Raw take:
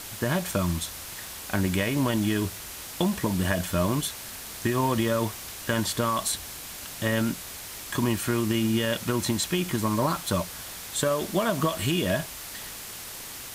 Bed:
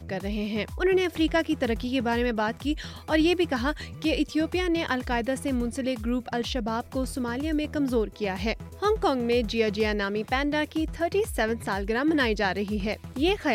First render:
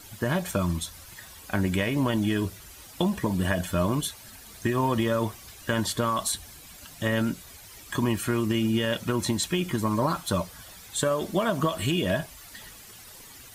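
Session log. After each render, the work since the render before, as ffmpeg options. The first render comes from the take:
-af "afftdn=nr=12:nf=-40"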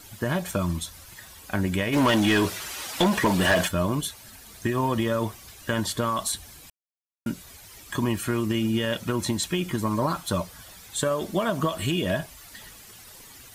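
-filter_complex "[0:a]asplit=3[s0][s1][s2];[s0]afade=t=out:st=1.92:d=0.02[s3];[s1]asplit=2[s4][s5];[s5]highpass=f=720:p=1,volume=12.6,asoftclip=type=tanh:threshold=0.266[s6];[s4][s6]amix=inputs=2:normalize=0,lowpass=f=4900:p=1,volume=0.501,afade=t=in:st=1.92:d=0.02,afade=t=out:st=3.67:d=0.02[s7];[s2]afade=t=in:st=3.67:d=0.02[s8];[s3][s7][s8]amix=inputs=3:normalize=0,asplit=3[s9][s10][s11];[s9]atrim=end=6.7,asetpts=PTS-STARTPTS,afade=t=out:st=6.696:d=0.004:c=hsin[s12];[s10]atrim=start=6.7:end=7.26,asetpts=PTS-STARTPTS,volume=0[s13];[s11]atrim=start=7.26,asetpts=PTS-STARTPTS,afade=t=in:d=0.004:c=hsin[s14];[s12][s13][s14]concat=n=3:v=0:a=1"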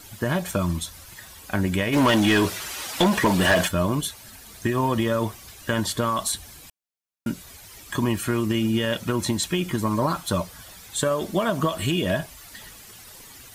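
-af "volume=1.26"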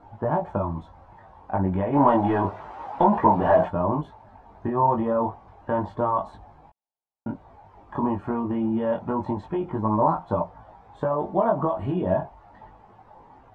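-af "flanger=delay=18.5:depth=3:speed=0.29,lowpass=f=850:t=q:w=4.9"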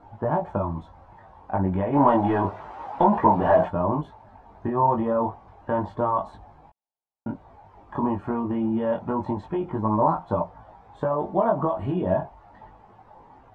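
-af anull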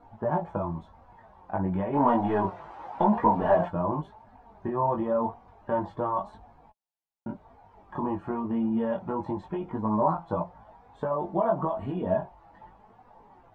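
-af "flanger=delay=4.1:depth=2:regen=47:speed=0.92:shape=sinusoidal"

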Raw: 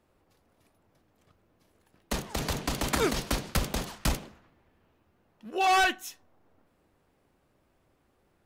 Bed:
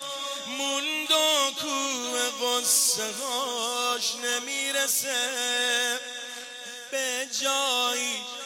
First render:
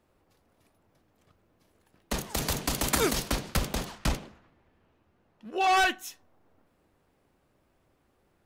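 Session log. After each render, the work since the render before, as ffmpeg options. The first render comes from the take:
-filter_complex "[0:a]asettb=1/sr,asplit=3[s0][s1][s2];[s0]atrim=end=2.184[s3];[s1]atrim=start=2.18:end=3.28,asetpts=PTS-STARTPTS,afade=t=in:d=0.004:c=qsin,afade=t=out:st=1.096:d=0.004:c=qsin,highshelf=f=6700:g=9.5[s4];[s2]atrim=start=3.276[s5];[s3][s4]acrossfade=d=0.004:c1=hsin:c2=qsin[s6];[s6][s5]acrossfade=d=0.004:c1=qsin:c2=hsin,asettb=1/sr,asplit=3[s7][s8][s9];[s7]atrim=end=3.874[s10];[s8]atrim=start=3.87:end=5.77,asetpts=PTS-STARTPTS,afade=t=in:d=0.004:c=qsin,afade=t=out:st=1.896:d=0.004:c=qsin,highshelf=f=9500:g=-9.5[s11];[s9]atrim=start=5.766[s12];[s10][s11]acrossfade=d=0.004:c1=hsin:c2=qsin[s13];[s13][s12]acrossfade=d=0.004:c1=qsin:c2=hsin"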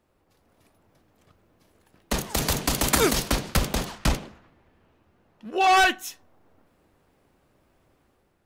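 -af "dynaudnorm=f=110:g=7:m=1.78"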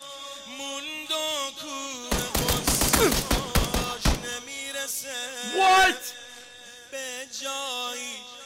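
-filter_complex "[1:a]volume=0.501[s0];[0:a][s0]amix=inputs=2:normalize=0"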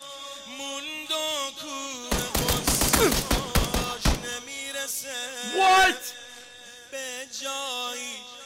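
-af anull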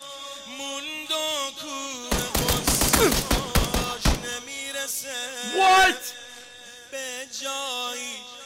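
-af "volume=1.19"

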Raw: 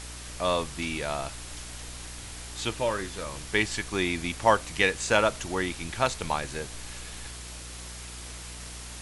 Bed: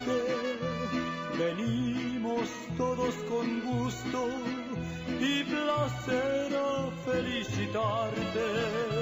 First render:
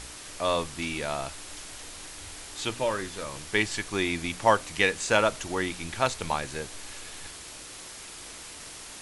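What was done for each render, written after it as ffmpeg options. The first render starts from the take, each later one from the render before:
-af "bandreject=f=60:t=h:w=4,bandreject=f=120:t=h:w=4,bandreject=f=180:t=h:w=4,bandreject=f=240:t=h:w=4"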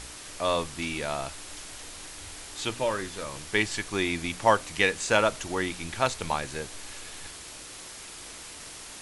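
-af anull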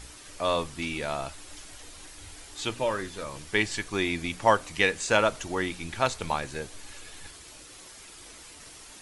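-af "afftdn=nr=7:nf=-44"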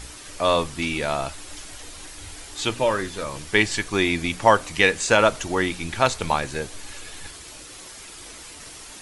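-af "volume=2.11,alimiter=limit=0.708:level=0:latency=1"

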